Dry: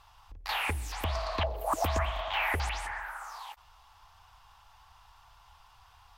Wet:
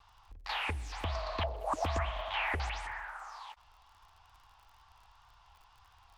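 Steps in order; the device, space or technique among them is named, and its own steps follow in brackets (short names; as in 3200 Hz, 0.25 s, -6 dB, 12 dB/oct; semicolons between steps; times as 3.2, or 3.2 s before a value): lo-fi chain (LPF 6100 Hz 12 dB/oct; wow and flutter; crackle 46/s -48 dBFS); gain -3.5 dB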